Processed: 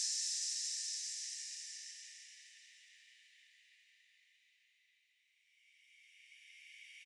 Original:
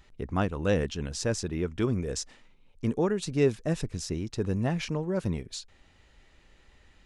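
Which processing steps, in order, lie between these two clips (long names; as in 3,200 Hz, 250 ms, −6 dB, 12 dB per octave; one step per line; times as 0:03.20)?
noise gate with hold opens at −48 dBFS
extreme stretch with random phases 14×, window 0.50 s, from 0:02.25
Butterworth high-pass 1,800 Hz 72 dB per octave
single-tap delay 887 ms −17 dB
level +1 dB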